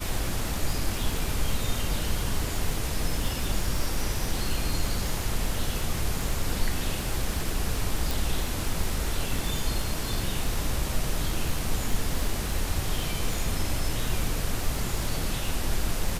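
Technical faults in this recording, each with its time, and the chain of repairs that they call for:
surface crackle 58 per second −30 dBFS
0:08.11: click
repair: click removal

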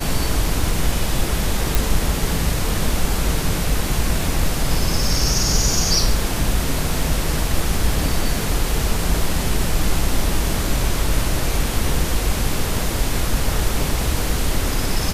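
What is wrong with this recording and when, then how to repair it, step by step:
0:01.75: click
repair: click removal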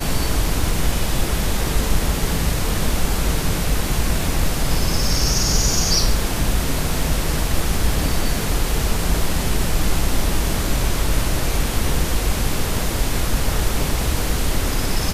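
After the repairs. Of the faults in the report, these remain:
none of them is left

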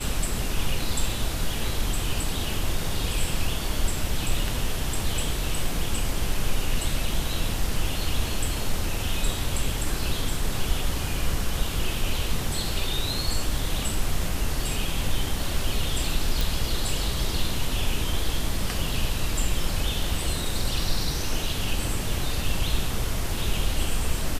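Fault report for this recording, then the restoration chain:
0:16.41: click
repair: click removal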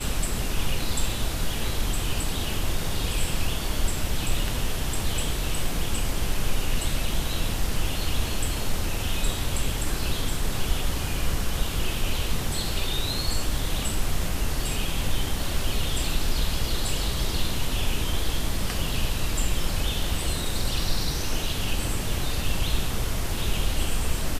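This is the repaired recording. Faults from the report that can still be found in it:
none of them is left

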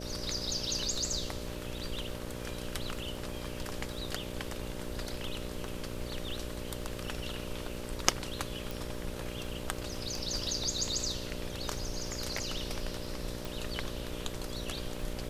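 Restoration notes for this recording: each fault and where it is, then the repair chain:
mains buzz 60 Hz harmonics 10 −42 dBFS
surface crackle 25 per second −43 dBFS
0:08.71: click
0:13.45: click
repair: click removal
hum removal 60 Hz, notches 10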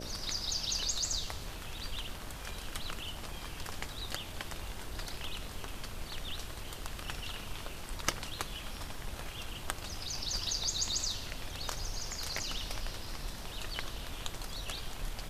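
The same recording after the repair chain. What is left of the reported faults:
none of them is left

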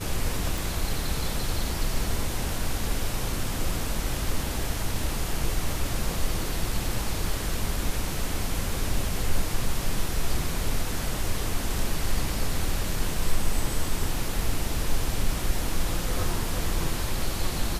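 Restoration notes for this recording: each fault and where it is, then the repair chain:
0:00.58: click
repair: click removal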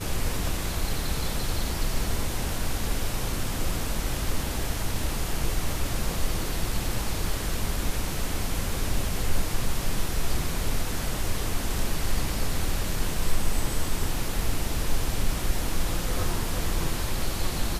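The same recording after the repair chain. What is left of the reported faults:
none of them is left

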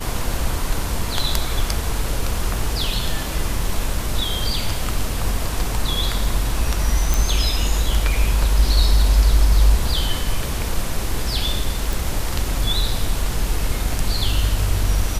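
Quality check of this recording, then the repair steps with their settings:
0:07.14: click
0:11.93: click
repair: click removal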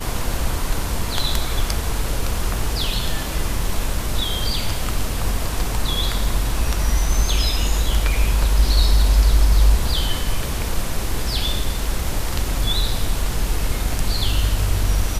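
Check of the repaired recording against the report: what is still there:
none of them is left

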